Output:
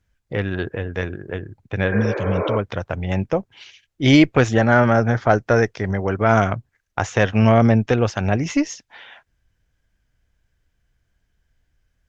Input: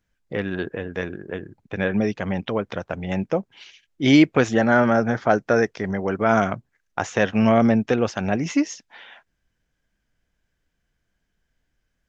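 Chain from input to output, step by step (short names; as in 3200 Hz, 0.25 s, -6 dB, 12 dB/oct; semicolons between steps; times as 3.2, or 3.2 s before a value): added harmonics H 4 -28 dB, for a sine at -2.5 dBFS; resonant low shelf 140 Hz +6.5 dB, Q 1.5; spectral repair 1.95–2.54, 280–2500 Hz both; gain +2 dB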